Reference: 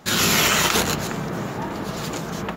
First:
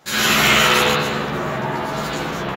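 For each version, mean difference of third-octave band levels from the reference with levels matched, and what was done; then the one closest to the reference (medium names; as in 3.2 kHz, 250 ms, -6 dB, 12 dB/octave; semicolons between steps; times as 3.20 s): 4.5 dB: bass shelf 420 Hz -8 dB; reverse; upward compressor, threshold -25 dBFS; reverse; doubling 14 ms -2 dB; spring tank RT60 1 s, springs 46/54 ms, chirp 25 ms, DRR -8 dB; trim -4 dB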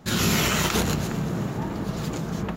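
3.0 dB: bass shelf 300 Hz +11.5 dB; vibrato 3.5 Hz 12 cents; on a send: feedback echo behind a high-pass 256 ms, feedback 58%, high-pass 2.2 kHz, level -17.5 dB; on the sum: trim -6.5 dB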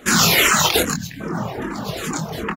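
6.0 dB: time-frequency box 0.93–1.20 s, 320–1500 Hz -21 dB; reverb removal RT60 1.6 s; doubling 24 ms -6 dB; barber-pole phaser -2.5 Hz; trim +7.5 dB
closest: second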